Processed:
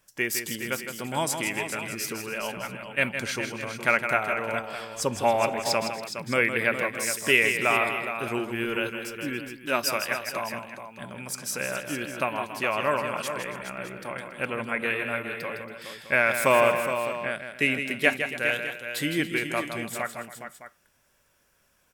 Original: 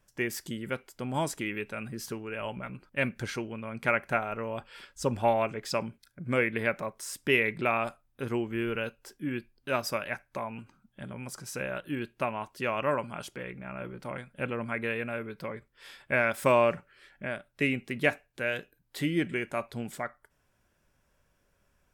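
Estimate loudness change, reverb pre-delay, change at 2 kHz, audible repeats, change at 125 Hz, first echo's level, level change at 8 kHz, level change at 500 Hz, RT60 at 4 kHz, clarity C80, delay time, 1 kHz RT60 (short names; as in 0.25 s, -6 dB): +5.0 dB, none, +7.0 dB, 4, -1.0 dB, -8.0 dB, +10.5 dB, +3.0 dB, none, none, 0.16 s, none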